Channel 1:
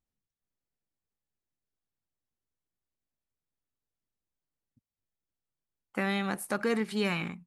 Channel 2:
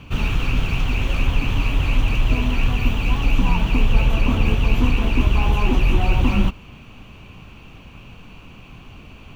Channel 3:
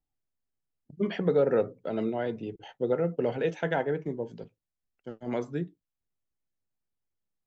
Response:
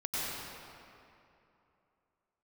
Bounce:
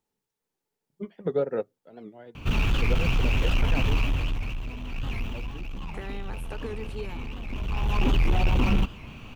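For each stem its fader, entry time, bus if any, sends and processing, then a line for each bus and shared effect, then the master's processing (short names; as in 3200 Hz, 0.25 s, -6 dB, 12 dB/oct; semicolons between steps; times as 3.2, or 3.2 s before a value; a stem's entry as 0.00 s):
-14.0 dB, 0.00 s, no send, small resonant body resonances 430/870 Hz, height 12 dB; three-band squash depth 70%
-0.5 dB, 2.35 s, no send, soft clip -15.5 dBFS, distortion -12 dB; auto duck -14 dB, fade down 0.80 s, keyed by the first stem
-0.5 dB, 0.00 s, no send, upward expander 2.5:1, over -39 dBFS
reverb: off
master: record warp 78 rpm, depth 160 cents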